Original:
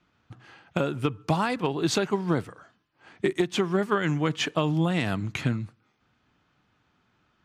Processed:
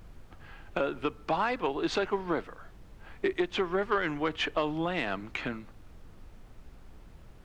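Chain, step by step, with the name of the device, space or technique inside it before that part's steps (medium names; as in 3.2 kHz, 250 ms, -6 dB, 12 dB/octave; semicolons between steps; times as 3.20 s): aircraft cabin announcement (band-pass 360–3200 Hz; saturation -16.5 dBFS, distortion -21 dB; brown noise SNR 15 dB)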